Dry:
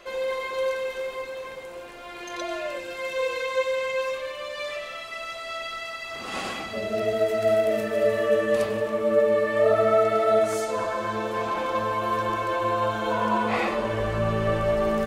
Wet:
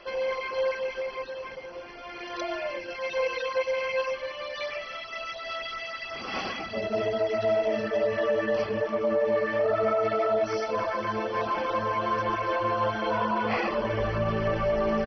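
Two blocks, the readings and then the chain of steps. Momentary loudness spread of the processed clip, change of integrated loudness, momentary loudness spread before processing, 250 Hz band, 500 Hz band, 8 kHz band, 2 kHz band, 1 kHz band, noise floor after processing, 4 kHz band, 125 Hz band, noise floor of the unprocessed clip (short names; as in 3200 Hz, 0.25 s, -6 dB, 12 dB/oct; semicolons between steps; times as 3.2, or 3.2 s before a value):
9 LU, -3.0 dB, 12 LU, -2.5 dB, -3.0 dB, n/a, -1.5 dB, -2.0 dB, -40 dBFS, -2.0 dB, -2.5 dB, -38 dBFS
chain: reverb removal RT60 0.53 s; high shelf 8900 Hz +3.5 dB; limiter -17.5 dBFS, peak gain reduction 7.5 dB; echo 0.141 s -21 dB; MP2 32 kbps 32000 Hz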